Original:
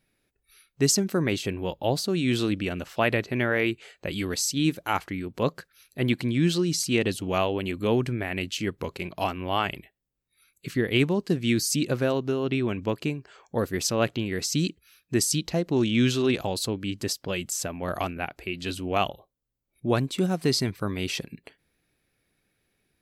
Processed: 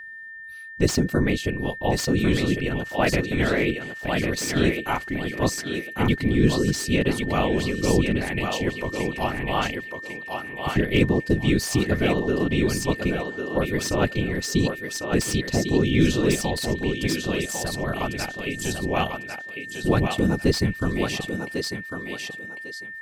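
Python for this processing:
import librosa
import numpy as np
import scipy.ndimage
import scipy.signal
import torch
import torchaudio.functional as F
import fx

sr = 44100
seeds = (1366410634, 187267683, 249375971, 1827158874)

p1 = fx.low_shelf(x, sr, hz=200.0, db=8.0)
p2 = fx.whisperise(p1, sr, seeds[0])
p3 = p2 + 10.0 ** (-37.0 / 20.0) * np.sin(2.0 * np.pi * 1800.0 * np.arange(len(p2)) / sr)
p4 = p3 + fx.echo_thinned(p3, sr, ms=1099, feedback_pct=27, hz=350.0, wet_db=-4, dry=0)
y = fx.slew_limit(p4, sr, full_power_hz=300.0)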